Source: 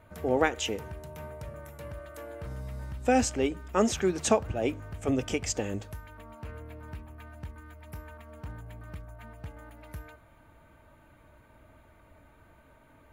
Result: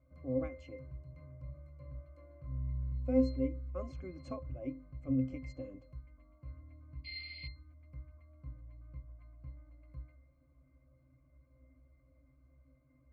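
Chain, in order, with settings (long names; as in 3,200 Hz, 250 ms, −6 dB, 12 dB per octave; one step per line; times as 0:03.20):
sound drawn into the spectrogram noise, 0:07.04–0:07.48, 2,000–4,900 Hz −28 dBFS
resonances in every octave C, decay 0.27 s
level +2.5 dB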